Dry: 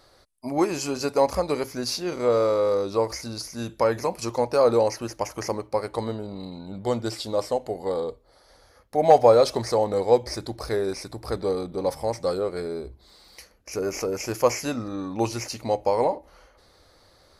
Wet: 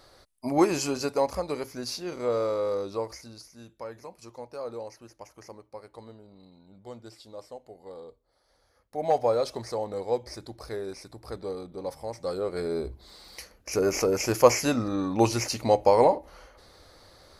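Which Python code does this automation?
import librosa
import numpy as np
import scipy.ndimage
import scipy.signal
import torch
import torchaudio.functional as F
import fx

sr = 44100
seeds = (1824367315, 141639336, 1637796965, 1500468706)

y = fx.gain(x, sr, db=fx.line((0.76, 1.0), (1.3, -6.0), (2.84, -6.0), (3.72, -17.5), (7.78, -17.5), (9.08, -9.0), (12.12, -9.0), (12.81, 3.0)))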